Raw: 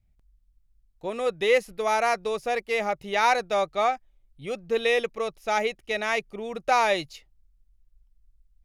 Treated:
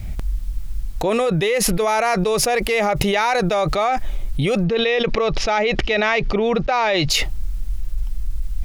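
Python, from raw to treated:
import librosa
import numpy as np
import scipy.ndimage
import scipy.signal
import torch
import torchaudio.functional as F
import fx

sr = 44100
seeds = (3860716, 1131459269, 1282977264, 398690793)

y = fx.lowpass(x, sr, hz=5100.0, slope=24, at=(4.64, 7.1))
y = fx.env_flatten(y, sr, amount_pct=100)
y = y * 10.0 ** (-1.0 / 20.0)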